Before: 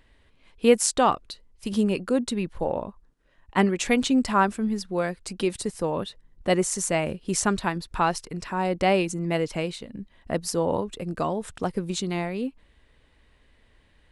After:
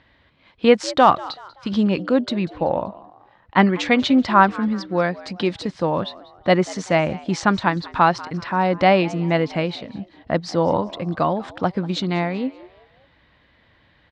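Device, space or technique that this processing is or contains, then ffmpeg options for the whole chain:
frequency-shifting delay pedal into a guitar cabinet: -filter_complex "[0:a]asplit=4[s0][s1][s2][s3];[s1]adelay=191,afreqshift=96,volume=0.1[s4];[s2]adelay=382,afreqshift=192,volume=0.0389[s5];[s3]adelay=573,afreqshift=288,volume=0.0151[s6];[s0][s4][s5][s6]amix=inputs=4:normalize=0,highpass=100,equalizer=f=230:t=q:w=4:g=-4,equalizer=f=420:t=q:w=4:g=-9,equalizer=f=2700:t=q:w=4:g=-5,lowpass=f=4400:w=0.5412,lowpass=f=4400:w=1.3066,volume=2.51"

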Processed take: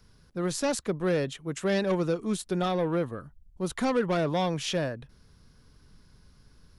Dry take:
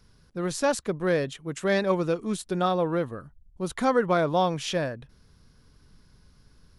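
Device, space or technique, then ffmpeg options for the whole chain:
one-band saturation: -filter_complex "[0:a]acrossover=split=400|2700[s0][s1][s2];[s1]asoftclip=type=tanh:threshold=0.0447[s3];[s0][s3][s2]amix=inputs=3:normalize=0"

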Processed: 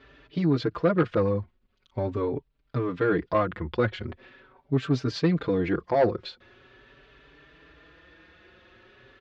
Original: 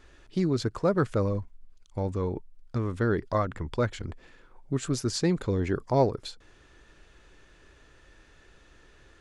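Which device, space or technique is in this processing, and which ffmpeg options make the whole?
barber-pole flanger into a guitar amplifier: -filter_complex "[0:a]asplit=2[s0][s1];[s1]adelay=4.7,afreqshift=0.42[s2];[s0][s2]amix=inputs=2:normalize=1,asoftclip=type=tanh:threshold=0.0944,highpass=79,equalizer=f=90:t=q:w=4:g=-8,equalizer=f=200:t=q:w=4:g=-4,equalizer=f=840:t=q:w=4:g=-4,lowpass=f=3900:w=0.5412,lowpass=f=3900:w=1.3066,volume=2.51"

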